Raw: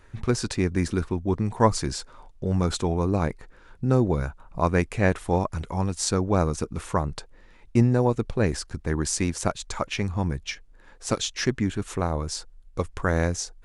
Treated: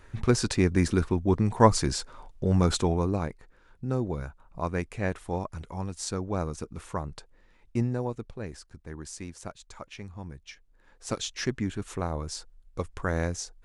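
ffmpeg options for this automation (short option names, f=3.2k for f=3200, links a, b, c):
-af "volume=10.5dB,afade=t=out:st=2.77:d=0.53:silence=0.354813,afade=t=out:st=7.85:d=0.56:silence=0.473151,afade=t=in:st=10.43:d=0.85:silence=0.334965"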